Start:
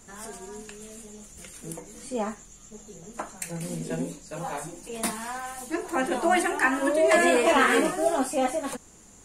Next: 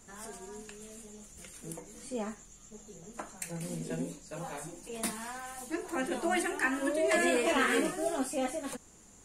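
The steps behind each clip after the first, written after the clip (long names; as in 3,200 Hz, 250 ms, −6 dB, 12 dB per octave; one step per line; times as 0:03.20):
dynamic equaliser 900 Hz, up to −6 dB, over −37 dBFS, Q 1.1
level −5 dB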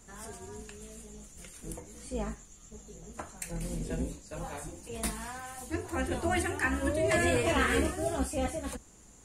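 sub-octave generator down 2 octaves, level +1 dB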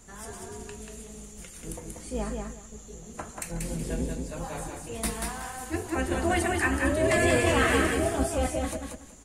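repeating echo 186 ms, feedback 23%, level −4 dB
level +3 dB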